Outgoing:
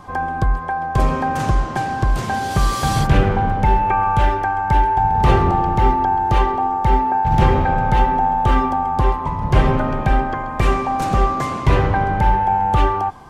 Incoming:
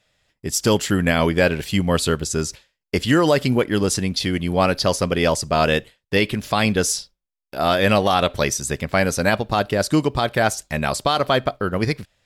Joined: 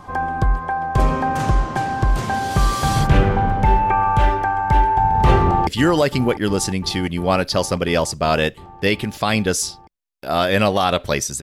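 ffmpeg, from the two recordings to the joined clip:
-filter_complex "[0:a]apad=whole_dur=11.42,atrim=end=11.42,atrim=end=5.672[a];[1:a]atrim=start=2.968:end=8.72[b];[a][b]acrossfade=d=0.004:c1=hsin:c2=hsin,asplit=2[c][d];[d]afade=t=in:st=5.42:d=0.01,afade=t=out:st=5.67:d=0.01,aecho=0:1:350|700|1050|1400|1750|2100|2450|2800|3150|3500|3850|4200:0.237137|0.201567|0.171332|0.145632|0.123787|0.105219|0.0894362|0.0760208|0.0646177|0.054925|0.0466863|0.0396833[e];[c][e]amix=inputs=2:normalize=0"

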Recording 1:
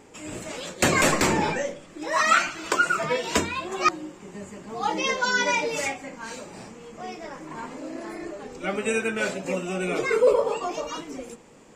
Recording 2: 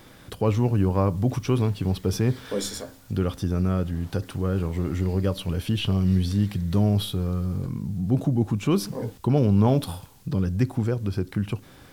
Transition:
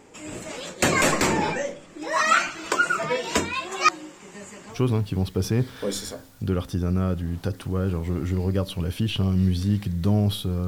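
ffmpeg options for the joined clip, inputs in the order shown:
-filter_complex "[0:a]asettb=1/sr,asplit=3[a][b][c];[a]atrim=end=3.534[d];[b]atrim=start=3.53:end=4.79,asetpts=PTS-STARTPTS,afade=t=in:d=0.004:c=qsin,afade=t=out:st=1.256:d=0.004:c=qsin,tiltshelf=f=830:g=-5[e];[c]atrim=start=4.786[f];[d][e]acrossfade=d=0.004:c1=hsin:c2=qsin[g];[g][f]acrossfade=d=0.004:c1=qsin:c2=hsin,apad=whole_dur=10.67,atrim=end=10.67,atrim=end=4.79,asetpts=PTS-STARTPTS[h];[1:a]atrim=start=1.38:end=7.36,asetpts=PTS-STARTPTS[i];[h][i]acrossfade=d=0.1:c1=tri:c2=tri"

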